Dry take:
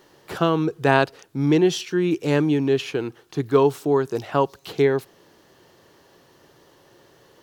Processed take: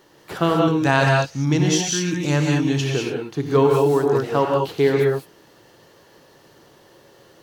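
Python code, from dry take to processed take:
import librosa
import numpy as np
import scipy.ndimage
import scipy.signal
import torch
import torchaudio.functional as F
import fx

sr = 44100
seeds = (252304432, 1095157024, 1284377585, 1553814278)

y = fx.graphic_eq_15(x, sr, hz=(100, 400, 6300), db=(7, -10, 10), at=(0.67, 2.84))
y = fx.rev_gated(y, sr, seeds[0], gate_ms=230, shape='rising', drr_db=-0.5)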